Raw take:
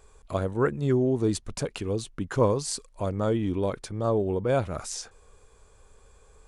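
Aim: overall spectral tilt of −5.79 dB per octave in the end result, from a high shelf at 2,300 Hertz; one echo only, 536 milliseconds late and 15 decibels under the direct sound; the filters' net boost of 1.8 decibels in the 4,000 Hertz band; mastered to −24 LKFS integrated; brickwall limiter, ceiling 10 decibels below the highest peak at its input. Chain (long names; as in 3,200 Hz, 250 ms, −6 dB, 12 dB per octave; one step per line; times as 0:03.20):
high-shelf EQ 2,300 Hz −7 dB
parametric band 4,000 Hz +9 dB
brickwall limiter −21.5 dBFS
single-tap delay 536 ms −15 dB
level +8 dB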